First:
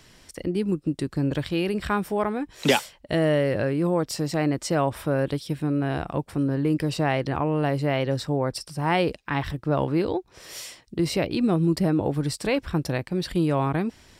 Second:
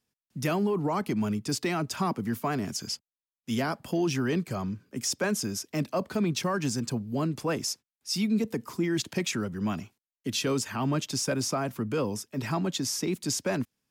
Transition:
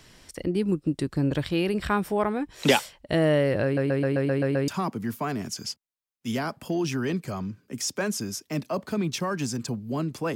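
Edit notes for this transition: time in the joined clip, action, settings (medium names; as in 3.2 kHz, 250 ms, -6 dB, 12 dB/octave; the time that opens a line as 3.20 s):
first
3.64 s: stutter in place 0.13 s, 8 plays
4.68 s: go over to second from 1.91 s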